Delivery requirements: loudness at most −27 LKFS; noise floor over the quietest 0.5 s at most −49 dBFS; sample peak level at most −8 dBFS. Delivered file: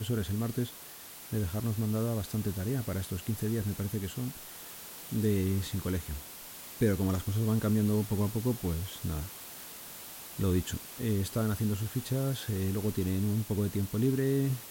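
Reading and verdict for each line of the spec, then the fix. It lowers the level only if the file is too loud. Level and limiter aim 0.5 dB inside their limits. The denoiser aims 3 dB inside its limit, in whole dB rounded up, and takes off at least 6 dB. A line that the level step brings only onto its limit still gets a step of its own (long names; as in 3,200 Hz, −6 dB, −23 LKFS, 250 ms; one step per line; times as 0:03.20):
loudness −32.0 LKFS: in spec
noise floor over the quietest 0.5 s −48 dBFS: out of spec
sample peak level −15.5 dBFS: in spec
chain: broadband denoise 6 dB, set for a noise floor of −48 dBFS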